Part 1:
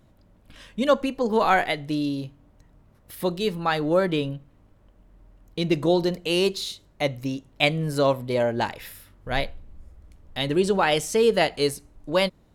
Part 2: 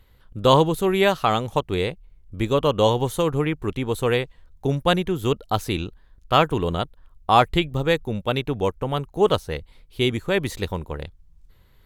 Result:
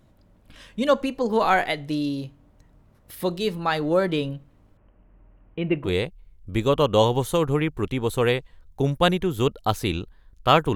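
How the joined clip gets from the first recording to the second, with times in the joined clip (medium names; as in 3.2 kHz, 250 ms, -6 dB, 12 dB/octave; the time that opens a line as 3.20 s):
part 1
4.77–5.91 s: elliptic low-pass 2.8 kHz, stop band 50 dB
5.83 s: go over to part 2 from 1.68 s, crossfade 0.16 s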